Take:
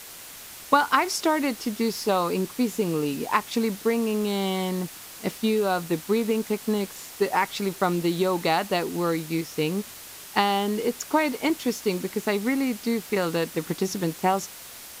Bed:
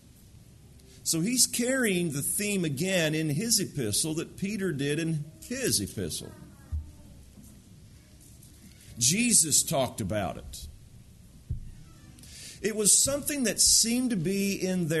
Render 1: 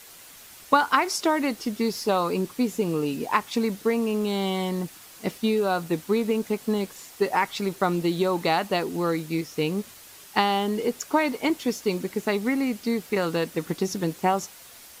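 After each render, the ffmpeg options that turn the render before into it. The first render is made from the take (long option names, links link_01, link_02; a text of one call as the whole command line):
ffmpeg -i in.wav -af "afftdn=noise_reduction=6:noise_floor=-43" out.wav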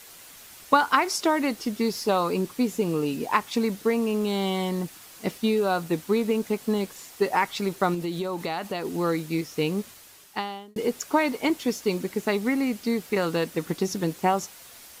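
ffmpeg -i in.wav -filter_complex "[0:a]asettb=1/sr,asplit=3[link_01][link_02][link_03];[link_01]atrim=end=7.944[link_04];[link_02]atrim=start=7.94:end=8.85,asetpts=PTS-STARTPTS,afade=type=in:duration=0.004:curve=qsin,afade=type=out:start_time=0.906:duration=0.004:curve=qsin,acompressor=threshold=-27dB:ratio=3:attack=3.2:release=140:knee=1:detection=peak[link_05];[link_03]atrim=start=8.846[link_06];[link_04][link_05]acrossfade=duration=0.004:curve1=hsin:curve2=qsin[link_07];[link_07][link_06]acrossfade=duration=0.004:curve1=qsin:curve2=hsin,asplit=2[link_08][link_09];[link_08]atrim=end=10.76,asetpts=PTS-STARTPTS,afade=type=out:start_time=9.81:duration=0.95[link_10];[link_09]atrim=start=10.76,asetpts=PTS-STARTPTS,afade=type=in:duration=0.004:curve=hsin[link_11];[link_10][link_11]concat=n=2:v=0:a=1" out.wav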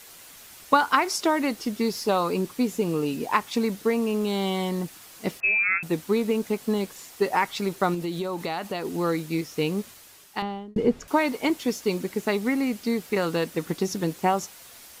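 ffmpeg -i in.wav -filter_complex "[0:a]asettb=1/sr,asplit=3[link_01][link_02][link_03];[link_01]atrim=end=5.404[link_04];[link_02]atrim=start=5.4:end=5.83,asetpts=PTS-STARTPTS,afade=type=in:duration=0.004:curve=qsin,afade=type=out:start_time=0.426:duration=0.004:curve=qsin,lowpass=frequency=2400:width_type=q:width=0.5098,lowpass=frequency=2400:width_type=q:width=0.6013,lowpass=frequency=2400:width_type=q:width=0.9,lowpass=frequency=2400:width_type=q:width=2.563,afreqshift=-2800[link_05];[link_03]atrim=start=5.826[link_06];[link_04][link_05]acrossfade=duration=0.004:curve1=hsin:curve2=qsin[link_07];[link_07][link_06]acrossfade=duration=0.004:curve1=qsin:curve2=hsin,asettb=1/sr,asplit=3[link_08][link_09][link_10];[link_08]atrim=end=10.424[link_11];[link_09]atrim=start=10.42:end=11.08,asetpts=PTS-STARTPTS,afade=type=in:duration=0.004:curve=qsin,afade=type=out:start_time=0.656:duration=0.004:curve=qsin,aemphasis=mode=reproduction:type=riaa[link_12];[link_10]atrim=start=11.076[link_13];[link_11][link_12]acrossfade=duration=0.004:curve1=hsin:curve2=qsin[link_14];[link_14][link_13]acrossfade=duration=0.004:curve1=qsin:curve2=hsin" out.wav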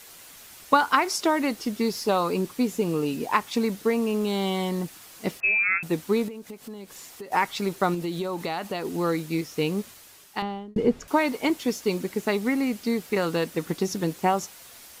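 ffmpeg -i in.wav -filter_complex "[0:a]asettb=1/sr,asplit=3[link_01][link_02][link_03];[link_01]atrim=end=6.284[link_04];[link_02]atrim=start=6.28:end=7.32,asetpts=PTS-STARTPTS,afade=type=in:duration=0.004:curve=qsin,afade=type=out:start_time=1.036:duration=0.004:curve=qsin,acompressor=threshold=-38dB:ratio=4:attack=3.2:release=140:knee=1:detection=peak[link_05];[link_03]atrim=start=7.316[link_06];[link_04][link_05]acrossfade=duration=0.004:curve1=hsin:curve2=qsin[link_07];[link_07][link_06]acrossfade=duration=0.004:curve1=qsin:curve2=hsin" out.wav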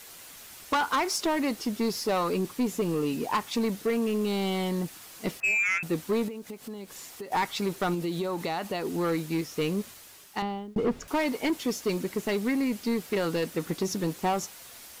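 ffmpeg -i in.wav -af "acrusher=bits=10:mix=0:aa=0.000001,asoftclip=type=tanh:threshold=-20.5dB" out.wav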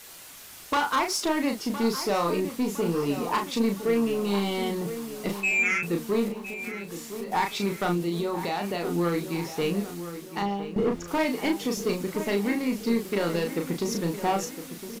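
ffmpeg -i in.wav -filter_complex "[0:a]asplit=2[link_01][link_02];[link_02]adelay=35,volume=-4.5dB[link_03];[link_01][link_03]amix=inputs=2:normalize=0,asplit=2[link_04][link_05];[link_05]adelay=1011,lowpass=frequency=3100:poles=1,volume=-11.5dB,asplit=2[link_06][link_07];[link_07]adelay=1011,lowpass=frequency=3100:poles=1,volume=0.51,asplit=2[link_08][link_09];[link_09]adelay=1011,lowpass=frequency=3100:poles=1,volume=0.51,asplit=2[link_10][link_11];[link_11]adelay=1011,lowpass=frequency=3100:poles=1,volume=0.51,asplit=2[link_12][link_13];[link_13]adelay=1011,lowpass=frequency=3100:poles=1,volume=0.51[link_14];[link_04][link_06][link_08][link_10][link_12][link_14]amix=inputs=6:normalize=0" out.wav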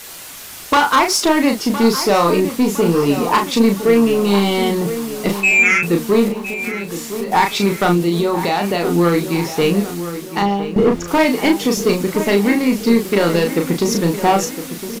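ffmpeg -i in.wav -af "volume=11.5dB" out.wav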